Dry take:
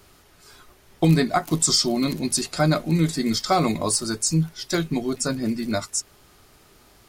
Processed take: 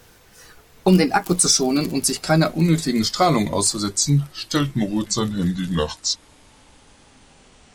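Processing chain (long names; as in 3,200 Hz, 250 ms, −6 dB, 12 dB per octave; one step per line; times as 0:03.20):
gliding playback speed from 122% → 61%
level +3 dB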